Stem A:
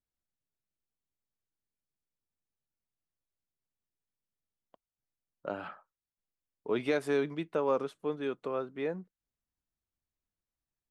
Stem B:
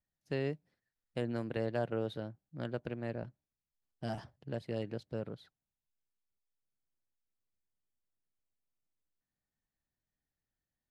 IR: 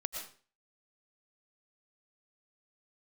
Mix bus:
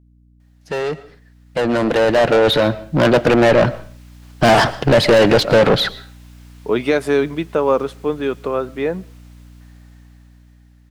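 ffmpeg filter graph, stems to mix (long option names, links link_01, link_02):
-filter_complex "[0:a]volume=2dB,asplit=2[link_01][link_02];[link_02]volume=-23.5dB[link_03];[1:a]dynaudnorm=framelen=490:gausssize=11:maxgain=9dB,asplit=2[link_04][link_05];[link_05]highpass=frequency=720:poles=1,volume=33dB,asoftclip=type=tanh:threshold=-15.5dB[link_06];[link_04][link_06]amix=inputs=2:normalize=0,lowpass=frequency=3200:poles=1,volume=-6dB,adelay=400,volume=0dB,asplit=2[link_07][link_08];[link_08]volume=-12.5dB[link_09];[2:a]atrim=start_sample=2205[link_10];[link_03][link_09]amix=inputs=2:normalize=0[link_11];[link_11][link_10]afir=irnorm=-1:irlink=0[link_12];[link_01][link_07][link_12]amix=inputs=3:normalize=0,aeval=exprs='val(0)+0.00316*(sin(2*PI*60*n/s)+sin(2*PI*2*60*n/s)/2+sin(2*PI*3*60*n/s)/3+sin(2*PI*4*60*n/s)/4+sin(2*PI*5*60*n/s)/5)':channel_layout=same,dynaudnorm=framelen=340:gausssize=11:maxgain=11.5dB"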